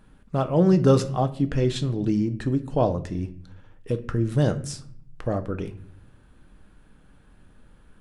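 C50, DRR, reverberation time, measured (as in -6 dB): 15.5 dB, 9.0 dB, 0.60 s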